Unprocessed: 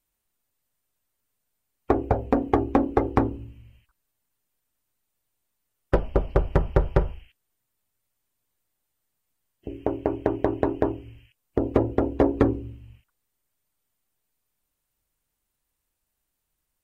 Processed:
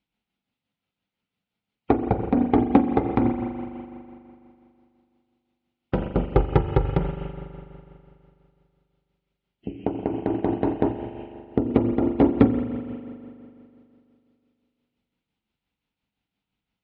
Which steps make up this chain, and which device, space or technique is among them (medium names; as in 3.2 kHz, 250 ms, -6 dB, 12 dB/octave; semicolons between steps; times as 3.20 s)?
6.34–6.97 s: comb 2.4 ms, depth 74%; combo amplifier with spring reverb and tremolo (spring tank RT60 2.6 s, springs 41 ms, chirp 80 ms, DRR 6 dB; tremolo 5.8 Hz, depth 44%; cabinet simulation 76–3700 Hz, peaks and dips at 83 Hz -9 dB, 200 Hz +8 dB, 380 Hz -6 dB, 590 Hz -9 dB, 1.1 kHz -9 dB, 1.7 kHz -9 dB); trim +5.5 dB